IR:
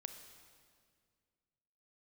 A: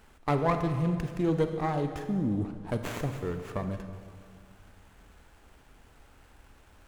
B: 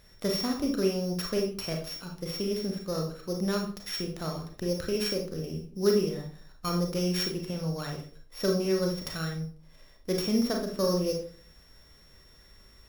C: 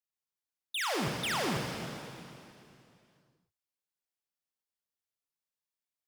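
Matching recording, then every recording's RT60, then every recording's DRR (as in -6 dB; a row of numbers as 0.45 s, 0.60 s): A; 2.0 s, 0.45 s, 2.6 s; 7.0 dB, 1.0 dB, 1.5 dB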